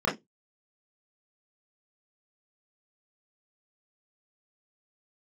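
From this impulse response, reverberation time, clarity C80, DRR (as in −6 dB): 0.15 s, 23.5 dB, −7.5 dB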